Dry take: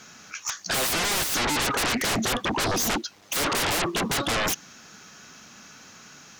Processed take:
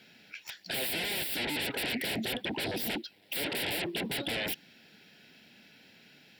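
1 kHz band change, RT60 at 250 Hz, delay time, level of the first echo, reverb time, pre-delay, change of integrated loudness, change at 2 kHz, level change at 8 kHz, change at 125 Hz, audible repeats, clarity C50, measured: -15.0 dB, no reverb, no echo, no echo, no reverb, no reverb, -8.0 dB, -7.5 dB, -15.0 dB, -9.5 dB, no echo, no reverb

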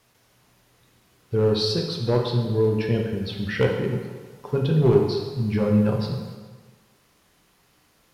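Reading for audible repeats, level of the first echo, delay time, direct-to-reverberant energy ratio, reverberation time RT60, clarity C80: no echo, no echo, no echo, 1.0 dB, 1.4 s, 6.0 dB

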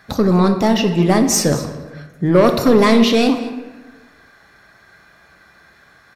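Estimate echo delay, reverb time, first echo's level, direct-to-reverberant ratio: 217 ms, 1.2 s, -18.0 dB, 5.5 dB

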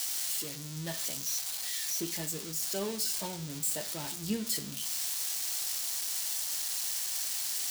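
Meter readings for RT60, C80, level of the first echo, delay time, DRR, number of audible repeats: 0.50 s, 17.5 dB, no echo, no echo, 9.0 dB, no echo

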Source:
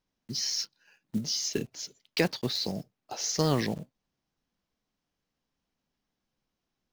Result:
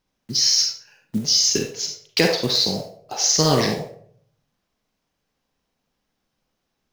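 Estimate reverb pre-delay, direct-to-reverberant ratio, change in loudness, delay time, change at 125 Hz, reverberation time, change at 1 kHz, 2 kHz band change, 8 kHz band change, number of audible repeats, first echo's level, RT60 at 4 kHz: 38 ms, 1.0 dB, +12.0 dB, no echo, +6.5 dB, 0.60 s, +10.0 dB, +9.5 dB, +13.5 dB, no echo, no echo, 0.35 s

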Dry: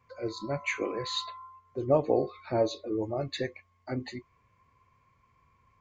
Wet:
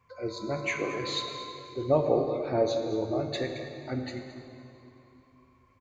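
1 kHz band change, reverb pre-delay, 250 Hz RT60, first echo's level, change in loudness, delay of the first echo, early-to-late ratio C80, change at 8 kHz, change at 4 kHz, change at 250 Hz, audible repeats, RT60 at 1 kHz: +1.0 dB, 22 ms, 3.1 s, -15.0 dB, +1.0 dB, 220 ms, 6.0 dB, no reading, +1.0 dB, +1.5 dB, 1, 2.9 s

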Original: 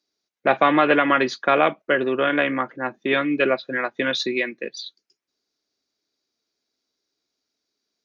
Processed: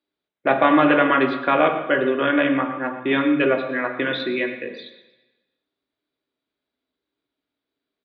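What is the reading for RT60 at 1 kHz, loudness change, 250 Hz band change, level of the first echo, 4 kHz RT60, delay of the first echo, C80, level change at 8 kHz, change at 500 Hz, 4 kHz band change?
1.1 s, +1.0 dB, +4.0 dB, -14.5 dB, 1.1 s, 118 ms, 9.0 dB, no reading, +1.0 dB, -2.5 dB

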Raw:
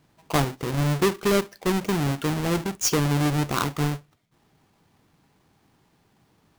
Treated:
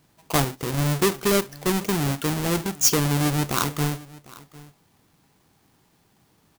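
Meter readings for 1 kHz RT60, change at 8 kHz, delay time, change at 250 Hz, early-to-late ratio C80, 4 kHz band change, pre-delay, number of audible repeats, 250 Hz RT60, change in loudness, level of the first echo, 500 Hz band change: no reverb, +5.5 dB, 751 ms, 0.0 dB, no reverb, +3.0 dB, no reverb, 1, no reverb, +1.5 dB, -21.0 dB, 0.0 dB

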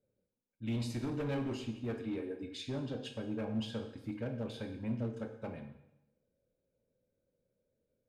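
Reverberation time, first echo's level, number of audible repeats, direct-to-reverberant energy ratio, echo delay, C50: 0.85 s, no echo, no echo, 5.5 dB, no echo, 8.5 dB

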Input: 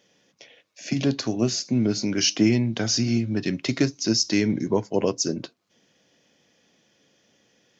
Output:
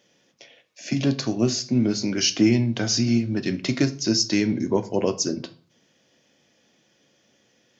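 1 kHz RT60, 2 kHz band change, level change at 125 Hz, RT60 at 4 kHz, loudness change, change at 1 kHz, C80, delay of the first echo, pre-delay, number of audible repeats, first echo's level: 0.40 s, +0.5 dB, +1.0 dB, 0.35 s, +1.0 dB, +0.5 dB, 21.5 dB, no echo, 3 ms, no echo, no echo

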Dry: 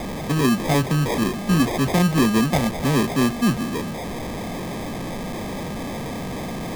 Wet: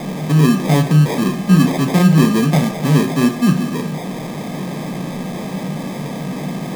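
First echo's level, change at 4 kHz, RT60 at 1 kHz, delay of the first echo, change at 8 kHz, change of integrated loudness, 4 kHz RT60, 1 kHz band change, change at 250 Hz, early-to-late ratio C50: no echo, +2.0 dB, 0.55 s, no echo, +2.0 dB, +6.0 dB, 0.50 s, +2.0 dB, +6.0 dB, 11.5 dB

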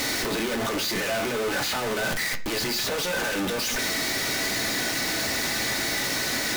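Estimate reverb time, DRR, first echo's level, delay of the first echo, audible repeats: 0.45 s, 4.0 dB, no echo, no echo, no echo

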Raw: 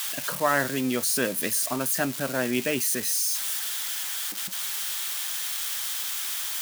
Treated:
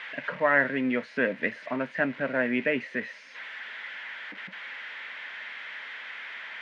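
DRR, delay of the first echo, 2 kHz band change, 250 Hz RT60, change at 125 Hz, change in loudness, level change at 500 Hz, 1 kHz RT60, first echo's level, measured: no reverb, no echo, +3.5 dB, no reverb, -6.0 dB, -4.5 dB, +0.5 dB, no reverb, no echo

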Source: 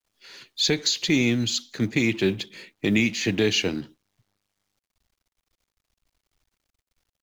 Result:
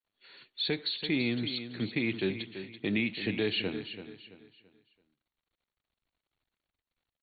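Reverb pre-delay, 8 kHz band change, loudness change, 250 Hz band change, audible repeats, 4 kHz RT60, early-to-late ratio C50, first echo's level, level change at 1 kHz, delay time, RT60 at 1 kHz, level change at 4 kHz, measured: no reverb, under -40 dB, -9.0 dB, -8.5 dB, 3, no reverb, no reverb, -11.0 dB, -7.5 dB, 334 ms, no reverb, -8.5 dB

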